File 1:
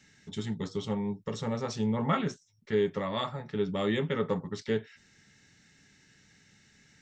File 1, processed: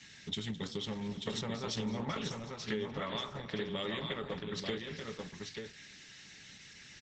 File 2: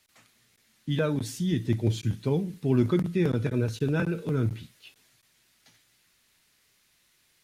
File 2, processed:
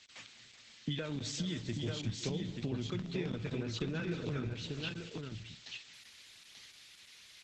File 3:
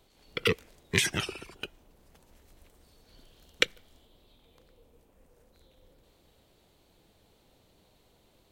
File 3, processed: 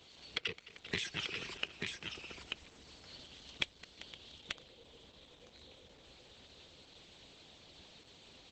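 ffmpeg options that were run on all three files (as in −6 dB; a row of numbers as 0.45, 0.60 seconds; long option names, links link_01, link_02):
-filter_complex "[0:a]highpass=frequency=51:width=0.5412,highpass=frequency=51:width=1.3066,equalizer=frequency=3400:width=0.66:gain=11,acompressor=threshold=-36dB:ratio=12,asplit=2[link_01][link_02];[link_02]aecho=0:1:214|393|515|887:0.158|0.188|0.126|0.596[link_03];[link_01][link_03]amix=inputs=2:normalize=0,volume=2dB" -ar 48000 -c:a libopus -b:a 12k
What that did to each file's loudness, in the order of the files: −7.0, −11.5, −11.5 LU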